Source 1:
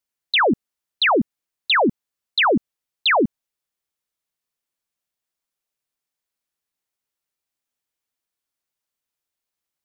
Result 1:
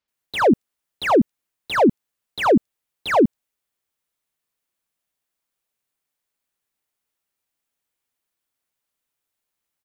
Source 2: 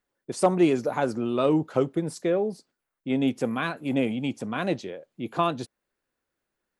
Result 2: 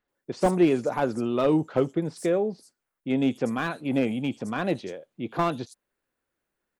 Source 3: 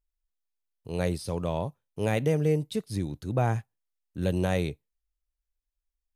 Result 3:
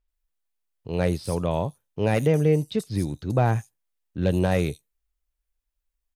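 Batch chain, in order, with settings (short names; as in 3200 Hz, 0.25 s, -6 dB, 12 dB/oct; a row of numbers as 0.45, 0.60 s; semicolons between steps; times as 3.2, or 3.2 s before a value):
bands offset in time lows, highs 80 ms, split 5200 Hz; slew limiter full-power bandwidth 98 Hz; normalise peaks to -9 dBFS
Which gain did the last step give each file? +4.0, +0.5, +4.5 dB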